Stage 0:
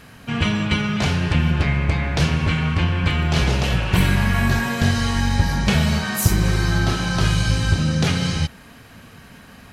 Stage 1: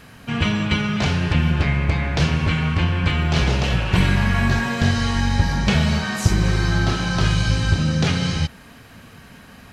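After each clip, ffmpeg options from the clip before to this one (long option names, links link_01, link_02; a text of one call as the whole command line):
ffmpeg -i in.wav -filter_complex "[0:a]acrossover=split=7900[link_01][link_02];[link_02]acompressor=threshold=-56dB:ratio=4:attack=1:release=60[link_03];[link_01][link_03]amix=inputs=2:normalize=0" out.wav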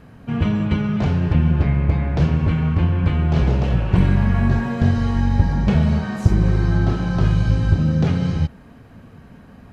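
ffmpeg -i in.wav -af "tiltshelf=frequency=1400:gain=9,volume=-6.5dB" out.wav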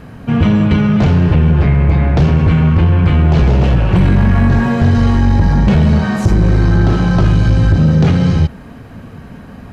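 ffmpeg -i in.wav -filter_complex "[0:a]asplit=2[link_01][link_02];[link_02]alimiter=limit=-11dB:level=0:latency=1,volume=1dB[link_03];[link_01][link_03]amix=inputs=2:normalize=0,asoftclip=type=tanh:threshold=-7.5dB,volume=4dB" out.wav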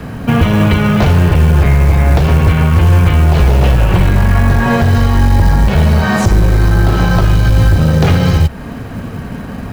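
ffmpeg -i in.wav -filter_complex "[0:a]acrossover=split=110|380|1300[link_01][link_02][link_03][link_04];[link_02]acompressor=threshold=-23dB:ratio=6[link_05];[link_01][link_05][link_03][link_04]amix=inputs=4:normalize=0,alimiter=limit=-10.5dB:level=0:latency=1:release=216,acrusher=bits=7:mode=log:mix=0:aa=0.000001,volume=9dB" out.wav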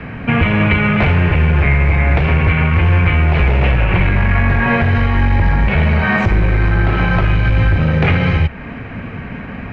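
ffmpeg -i in.wav -af "lowpass=frequency=2300:width_type=q:width=3.9,volume=-4dB" out.wav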